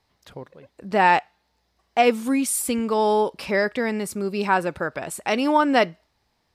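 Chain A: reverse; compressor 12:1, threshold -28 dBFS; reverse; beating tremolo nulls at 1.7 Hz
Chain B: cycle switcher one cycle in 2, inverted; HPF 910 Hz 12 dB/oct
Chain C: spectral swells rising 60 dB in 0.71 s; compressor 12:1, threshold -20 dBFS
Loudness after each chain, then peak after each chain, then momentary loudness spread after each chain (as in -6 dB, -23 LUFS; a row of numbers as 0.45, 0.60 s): -35.5, -25.0, -25.5 LUFS; -17.0, -4.0, -10.0 dBFS; 15, 10, 12 LU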